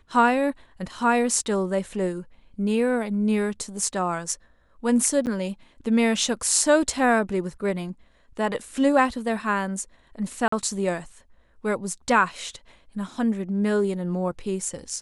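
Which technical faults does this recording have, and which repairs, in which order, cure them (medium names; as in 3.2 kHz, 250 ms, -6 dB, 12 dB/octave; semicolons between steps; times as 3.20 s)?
5.26–5.27 s: dropout 8.7 ms
10.48–10.52 s: dropout 44 ms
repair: interpolate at 5.26 s, 8.7 ms; interpolate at 10.48 s, 44 ms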